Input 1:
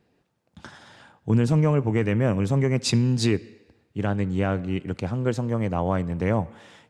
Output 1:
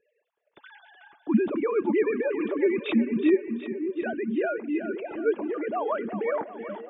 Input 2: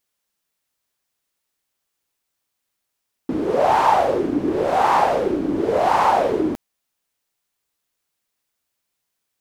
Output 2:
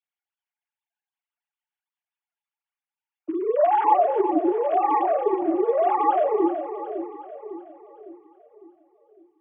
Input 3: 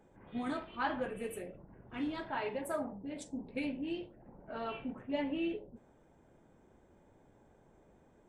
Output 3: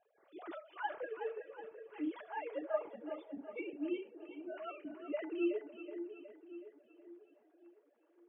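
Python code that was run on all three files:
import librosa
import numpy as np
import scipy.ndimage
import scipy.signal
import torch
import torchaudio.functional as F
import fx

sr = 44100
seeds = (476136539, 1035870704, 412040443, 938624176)

y = fx.sine_speech(x, sr)
y = fx.notch_comb(y, sr, f0_hz=260.0)
y = fx.echo_split(y, sr, split_hz=440.0, low_ms=554, high_ms=371, feedback_pct=52, wet_db=-9.5)
y = y * 10.0 ** (-2.0 / 20.0)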